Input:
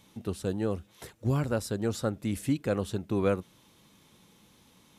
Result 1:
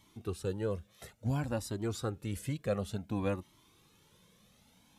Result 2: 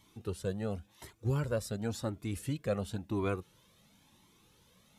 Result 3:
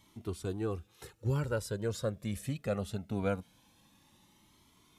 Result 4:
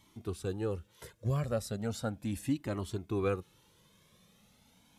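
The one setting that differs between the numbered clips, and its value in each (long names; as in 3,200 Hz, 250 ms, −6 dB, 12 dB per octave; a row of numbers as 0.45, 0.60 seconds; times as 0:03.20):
flanger whose copies keep moving one way, speed: 0.57, 0.94, 0.22, 0.36 Hertz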